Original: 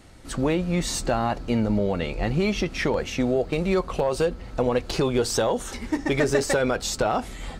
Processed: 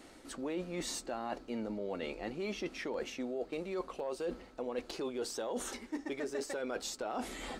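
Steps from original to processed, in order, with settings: resonant low shelf 190 Hz -12.5 dB, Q 1.5; reverse; compressor 6:1, threshold -33 dBFS, peak gain reduction 17 dB; reverse; gain -3 dB

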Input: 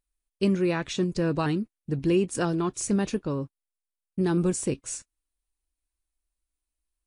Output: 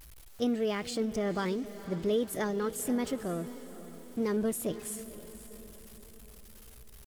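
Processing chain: zero-crossing step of -38 dBFS; pitch shift +3.5 st; diffused feedback echo 0.507 s, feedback 50%, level -14 dB; gain -6.5 dB

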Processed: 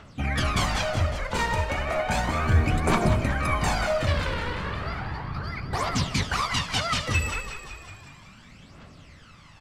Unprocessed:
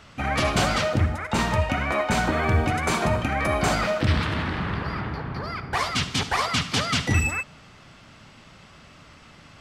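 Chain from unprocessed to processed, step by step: phaser 0.34 Hz, delay 2.2 ms, feedback 63%; frequency-shifting echo 0.185 s, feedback 62%, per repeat -45 Hz, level -9.5 dB; gain -5 dB

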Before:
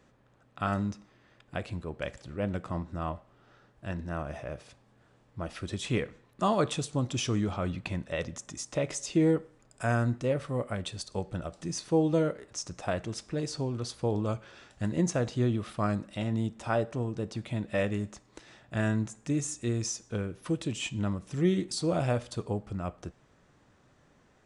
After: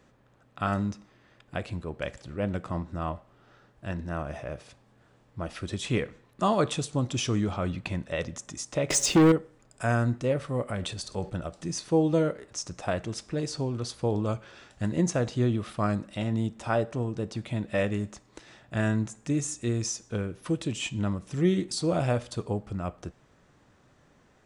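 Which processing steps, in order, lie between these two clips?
8.9–9.32 sample leveller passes 3; 10.68–11.3 transient shaper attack -2 dB, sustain +6 dB; gain +2 dB

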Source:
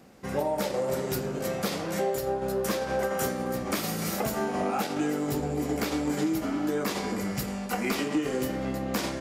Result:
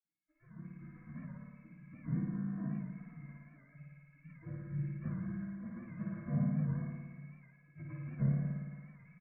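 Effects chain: steep low-pass 1900 Hz 72 dB/oct; comb 2.7 ms, depth 73%; spectral gate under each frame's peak -30 dB weak; AGC gain up to 14 dB; flutter echo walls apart 9.6 m, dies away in 1.4 s; reverb, pre-delay 47 ms; record warp 78 rpm, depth 100 cents; gain -1 dB

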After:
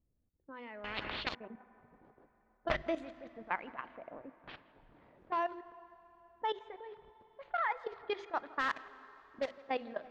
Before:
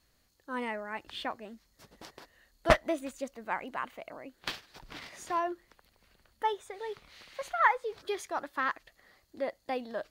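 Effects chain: 8.59–9.55 block floating point 3-bit; low-pass opened by the level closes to 310 Hz, open at -28 dBFS; bell 3300 Hz +5 dB 1.7 oct; notches 50/100/150/200/250/300/350/400 Hz; level quantiser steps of 16 dB; air absorption 170 m; tape echo 0.166 s, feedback 60%, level -20 dB, low-pass 2200 Hz; plate-style reverb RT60 4.7 s, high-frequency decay 0.7×, DRR 17.5 dB; 0.84–1.35 spectral compressor 10:1; gain +1 dB

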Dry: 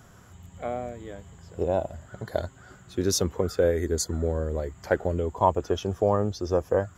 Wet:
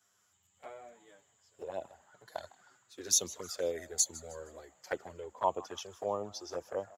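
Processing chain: HPF 1200 Hz 6 dB/oct; bell 6400 Hz +4 dB 1.4 oct; envelope flanger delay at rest 11.2 ms, full sweep at -26.5 dBFS; on a send: frequency-shifting echo 0.156 s, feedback 45%, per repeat +120 Hz, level -19.5 dB; on the sum: three-band expander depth 40%; gain -3.5 dB

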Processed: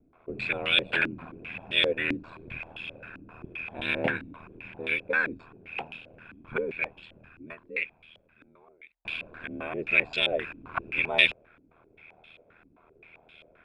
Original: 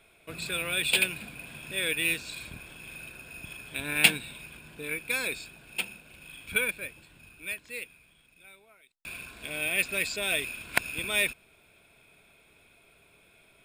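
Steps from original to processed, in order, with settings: ring modulator 40 Hz; stepped low-pass 7.6 Hz 280–3200 Hz; gain +3.5 dB

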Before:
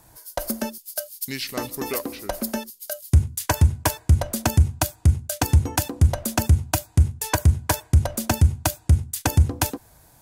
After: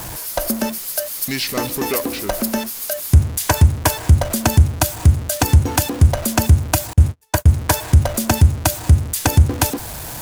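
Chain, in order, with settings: zero-crossing step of -29.5 dBFS; 6.93–7.46 gate -20 dBFS, range -40 dB; gain +4.5 dB

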